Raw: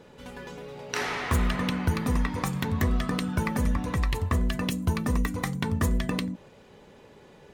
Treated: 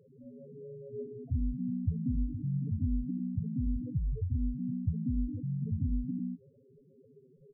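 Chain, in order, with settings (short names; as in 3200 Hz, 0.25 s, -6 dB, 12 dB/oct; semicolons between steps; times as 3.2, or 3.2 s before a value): median filter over 41 samples; comb 7.5 ms, depth 49%; loudest bins only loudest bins 4; 2–2.71 flutter echo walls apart 10.1 m, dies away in 0.27 s; gain -3 dB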